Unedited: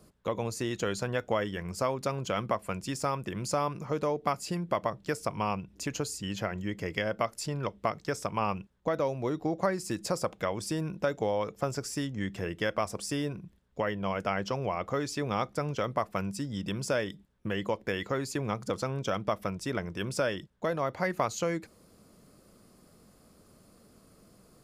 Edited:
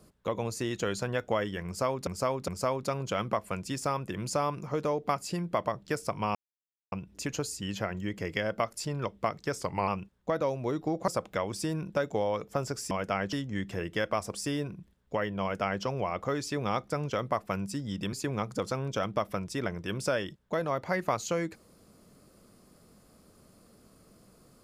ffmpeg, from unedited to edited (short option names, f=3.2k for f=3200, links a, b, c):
-filter_complex "[0:a]asplit=10[a][b][c][d][e][f][g][h][i][j];[a]atrim=end=2.072[k];[b]atrim=start=1.658:end=2.072[l];[c]atrim=start=1.658:end=5.53,asetpts=PTS-STARTPTS,afade=t=out:st=3.868:d=0.004:c=hsin,apad=pad_dur=0.57[m];[d]atrim=start=5.53:end=8.214,asetpts=PTS-STARTPTS,afade=t=in:d=0.004:c=hsin[n];[e]atrim=start=8.21:end=8.46,asetpts=PTS-STARTPTS,asetrate=39690,aresample=44100[o];[f]atrim=start=8.456:end=9.662[p];[g]atrim=start=10.148:end=11.982[q];[h]atrim=start=14.068:end=14.492[r];[i]atrim=start=11.978:end=16.782[s];[j]atrim=start=18.238[t];[k][l]acrossfade=d=0.004:c1=hsin:c2=hsin[u];[m][n]concat=n=2:v=0:a=1[v];[u][v]acrossfade=d=0.004:c1=hsin:c2=hsin[w];[w][o]acrossfade=d=0.004:c1=hsin:c2=hsin[x];[x][p]acrossfade=d=0.004:c1=hsin:c2=hsin[y];[y][q]acrossfade=d=0.004:c1=hsin:c2=hsin[z];[z][r]acrossfade=d=0.004:c1=hsin:c2=hsin[aa];[aa][s]acrossfade=d=0.004:c1=hsin:c2=hsin[ab];[ab][t]acrossfade=d=0.004:c1=hsin:c2=hsin"